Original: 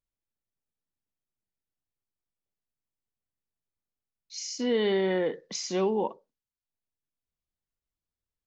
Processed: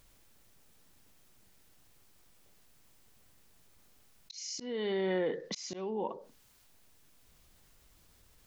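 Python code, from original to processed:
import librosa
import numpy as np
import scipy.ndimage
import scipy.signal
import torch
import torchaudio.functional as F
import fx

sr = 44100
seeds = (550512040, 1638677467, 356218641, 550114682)

y = fx.auto_swell(x, sr, attack_ms=568.0)
y = fx.env_flatten(y, sr, amount_pct=50)
y = y * 10.0 ** (-4.5 / 20.0)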